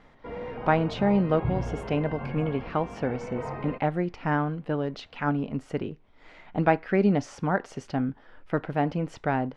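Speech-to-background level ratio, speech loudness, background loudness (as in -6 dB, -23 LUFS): 8.5 dB, -28.0 LUFS, -36.5 LUFS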